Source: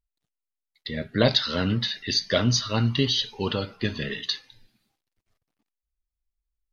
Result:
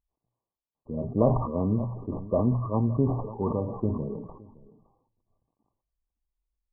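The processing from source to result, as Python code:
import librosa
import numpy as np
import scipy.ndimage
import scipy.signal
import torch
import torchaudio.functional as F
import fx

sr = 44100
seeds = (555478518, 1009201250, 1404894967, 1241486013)

y = fx.diode_clip(x, sr, knee_db=-16.0)
y = fx.brickwall_lowpass(y, sr, high_hz=1200.0)
y = fx.hum_notches(y, sr, base_hz=60, count=2)
y = y + 10.0 ** (-22.5 / 20.0) * np.pad(y, (int(564 * sr / 1000.0), 0))[:len(y)]
y = fx.sustainer(y, sr, db_per_s=59.0)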